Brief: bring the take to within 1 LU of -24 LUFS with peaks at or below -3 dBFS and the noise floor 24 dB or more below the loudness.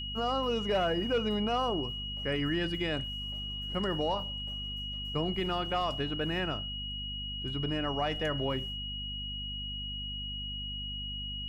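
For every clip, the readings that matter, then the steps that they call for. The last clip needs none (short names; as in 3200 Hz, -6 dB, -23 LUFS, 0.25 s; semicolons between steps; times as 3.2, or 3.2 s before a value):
hum 50 Hz; harmonics up to 250 Hz; hum level -40 dBFS; steady tone 2900 Hz; tone level -37 dBFS; loudness -33.0 LUFS; peak -20.5 dBFS; loudness target -24.0 LUFS
-> notches 50/100/150/200/250 Hz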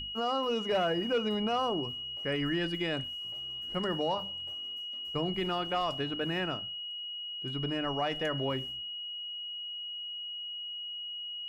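hum none; steady tone 2900 Hz; tone level -37 dBFS
-> notch 2900 Hz, Q 30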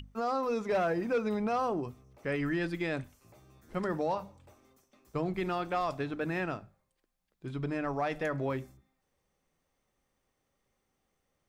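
steady tone none; loudness -33.5 LUFS; peak -21.5 dBFS; loudness target -24.0 LUFS
-> gain +9.5 dB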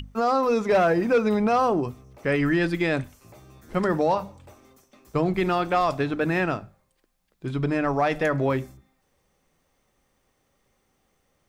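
loudness -24.0 LUFS; peak -12.0 dBFS; noise floor -71 dBFS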